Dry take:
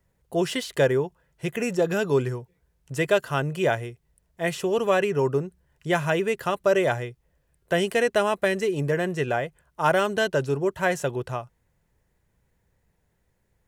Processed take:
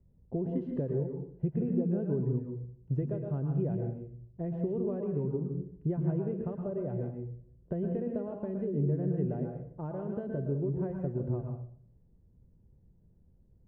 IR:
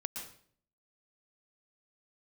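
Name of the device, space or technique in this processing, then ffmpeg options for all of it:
television next door: -filter_complex "[0:a]acompressor=threshold=-33dB:ratio=4,lowpass=280[a];[1:a]atrim=start_sample=2205[b];[a][b]afir=irnorm=-1:irlink=0,volume=8.5dB"

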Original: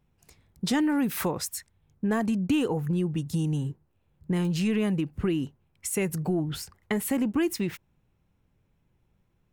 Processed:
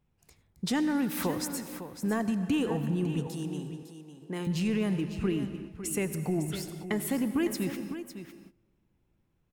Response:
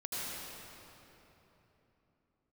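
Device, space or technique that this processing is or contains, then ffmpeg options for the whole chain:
keyed gated reverb: -filter_complex "[0:a]asplit=3[a][b][c];[1:a]atrim=start_sample=2205[d];[b][d]afir=irnorm=-1:irlink=0[e];[c]apad=whole_len=420138[f];[e][f]sidechaingate=range=-24dB:threshold=-58dB:ratio=16:detection=peak,volume=-12dB[g];[a][g]amix=inputs=2:normalize=0,asettb=1/sr,asplit=3[h][i][j];[h]atrim=end=3.274[k];[i]atrim=start=3.27:end=4.47,asetpts=PTS-STARTPTS,afade=t=in:d=0.004:c=qsin,afade=t=out:st=1.196:d=0.004:c=qsin,highpass=290[l];[j]atrim=start=4.466[m];[k][l]acrossfade=d=0.004:c1=hsin:c2=qsin[n];[n][m]acrossfade=d=0.004:c1=qsin:c2=hsin,aecho=1:1:555:0.282,volume=-4.5dB"

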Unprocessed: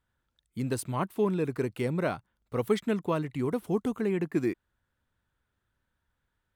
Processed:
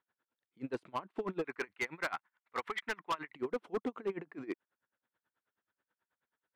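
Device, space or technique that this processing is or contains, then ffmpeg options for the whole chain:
helicopter radio: -filter_complex "[0:a]asettb=1/sr,asplit=3[a][b][c];[a]atrim=end=1.444[d];[b]atrim=start=1.44:end=3.34,asetpts=PTS-STARTPTS,afade=t=in:d=0.004:c=qsin,afade=t=out:st=1.896:d=0.004:c=qsin,equalizer=f=125:t=o:w=1:g=-9,equalizer=f=250:t=o:w=1:g=-5,equalizer=f=500:t=o:w=1:g=-8,equalizer=f=1k:t=o:w=1:g=5,equalizer=f=2k:t=o:w=1:g=11[e];[c]atrim=start=3.336[f];[d][e]acrossfade=d=0.004:c1=hsin:c2=qsin[g];[g][f]acrossfade=d=0.004:c1=qsin:c2=hsin,highpass=330,lowpass=2.7k,aeval=exprs='val(0)*pow(10,-26*(0.5-0.5*cos(2*PI*9.3*n/s))/20)':c=same,asoftclip=type=hard:threshold=-31.5dB,volume=2.5dB"

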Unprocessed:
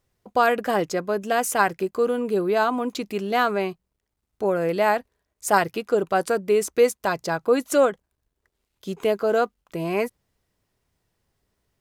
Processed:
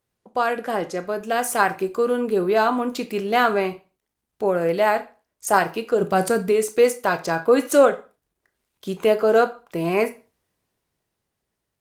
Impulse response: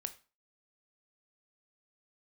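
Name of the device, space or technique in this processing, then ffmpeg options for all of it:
far-field microphone of a smart speaker: -filter_complex "[0:a]asplit=3[a][b][c];[a]afade=t=out:st=6:d=0.02[d];[b]bass=f=250:g=12,treble=f=4k:g=6,afade=t=in:st=6:d=0.02,afade=t=out:st=6.49:d=0.02[e];[c]afade=t=in:st=6.49:d=0.02[f];[d][e][f]amix=inputs=3:normalize=0[g];[1:a]atrim=start_sample=2205[h];[g][h]afir=irnorm=-1:irlink=0,highpass=f=140:p=1,dynaudnorm=f=160:g=17:m=7dB" -ar 48000 -c:a libopus -b:a 24k

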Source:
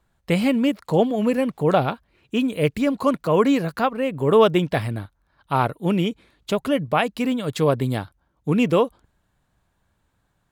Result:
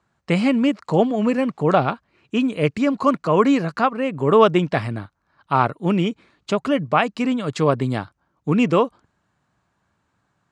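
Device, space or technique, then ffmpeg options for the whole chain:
car door speaker: -af "highpass=110,equalizer=f=500:t=q:w=4:g=-3,equalizer=f=1.2k:t=q:w=4:g=4,equalizer=f=3.5k:t=q:w=4:g=-5,lowpass=f=7.6k:w=0.5412,lowpass=f=7.6k:w=1.3066,volume=2dB"

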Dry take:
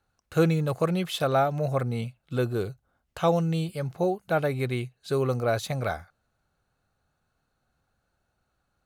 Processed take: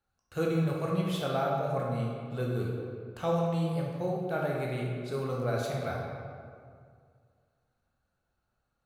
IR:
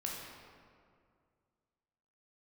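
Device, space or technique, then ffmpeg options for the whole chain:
stairwell: -filter_complex "[1:a]atrim=start_sample=2205[a];[0:a][a]afir=irnorm=-1:irlink=0,volume=-6.5dB"

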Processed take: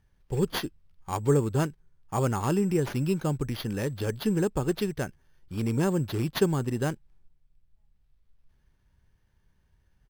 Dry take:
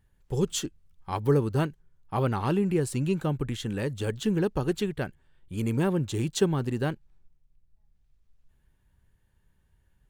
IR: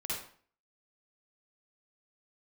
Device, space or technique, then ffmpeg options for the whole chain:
crushed at another speed: -af "asetrate=35280,aresample=44100,acrusher=samples=7:mix=1:aa=0.000001,asetrate=55125,aresample=44100"

